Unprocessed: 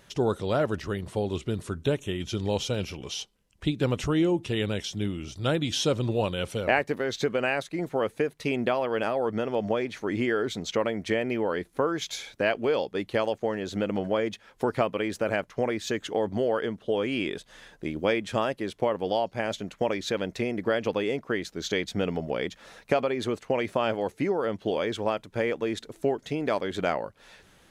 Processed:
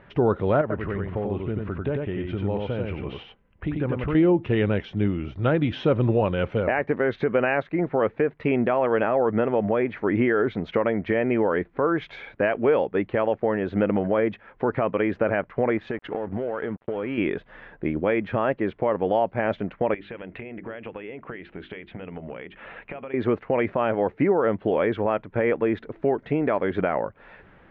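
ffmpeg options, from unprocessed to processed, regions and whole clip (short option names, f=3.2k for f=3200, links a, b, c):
-filter_complex "[0:a]asettb=1/sr,asplit=3[a][b][c];[a]atrim=end=0.614[d];[b]atrim=start=0.61:end=4.15,asetpts=PTS-STARTPTS,afade=t=in:d=0.004:c=qsin,afade=t=out:st=3.536:d=0.004:c=qsin,lowpass=3.5k,acompressor=threshold=-35dB:ratio=2:attack=3.2:release=140:knee=1:detection=peak,aecho=1:1:92:0.708,atrim=end_sample=156114[e];[c]atrim=start=4.146[f];[d][e]acrossfade=d=0.004:c1=hsin:c2=qsin[g];[g][f]acrossfade=d=0.004:c1=qsin:c2=hsin,asettb=1/sr,asplit=3[h][i][j];[h]atrim=end=15.774[k];[i]atrim=start=15.77:end=17.18,asetpts=PTS-STARTPTS,afade=t=in:d=0.004:c=qsin,afade=t=out:st=1.406:d=0.004:c=qsin,acompressor=threshold=-29dB:ratio=10:attack=3.2:release=140:knee=1:detection=peak,aeval=exprs='sgn(val(0))*max(abs(val(0))-0.00335,0)':c=same[l];[j]atrim=start=17.176[m];[k][l]acrossfade=d=0.004:c1=hsin:c2=qsin[n];[n][m]acrossfade=d=0.004:c1=qsin:c2=hsin,asettb=1/sr,asplit=3[o][p][q];[o]atrim=end=19.944[r];[p]atrim=start=19.94:end=23.14,asetpts=PTS-STARTPTS,afade=t=in:d=0.004:c=qsin,afade=t=out:st=3.196:d=0.004:c=qsin,lowpass=f=2.9k:t=q:w=2.9,acompressor=threshold=-37dB:ratio=16:attack=3.2:release=140:knee=1:detection=peak,bandreject=f=50:t=h:w=6,bandreject=f=100:t=h:w=6,bandreject=f=150:t=h:w=6,bandreject=f=200:t=h:w=6,bandreject=f=250:t=h:w=6,bandreject=f=300:t=h:w=6,bandreject=f=350:t=h:w=6,bandreject=f=400:t=h:w=6[s];[q]atrim=start=23.136[t];[r][s]acrossfade=d=0.004:c1=hsin:c2=qsin[u];[u][t]acrossfade=d=0.004:c1=qsin:c2=hsin,lowpass=f=2.2k:w=0.5412,lowpass=f=2.2k:w=1.3066,alimiter=limit=-18dB:level=0:latency=1:release=74,volume=6.5dB"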